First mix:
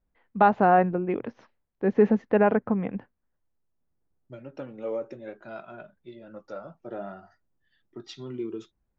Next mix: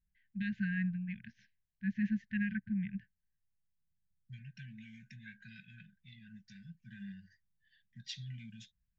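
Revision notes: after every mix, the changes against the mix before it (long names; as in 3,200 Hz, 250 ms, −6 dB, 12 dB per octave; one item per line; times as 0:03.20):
first voice −5.5 dB
master: add linear-phase brick-wall band-stop 220–1,500 Hz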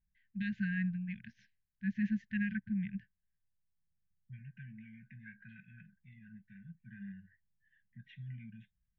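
second voice: add inverse Chebyshev low-pass filter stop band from 4,400 Hz, stop band 40 dB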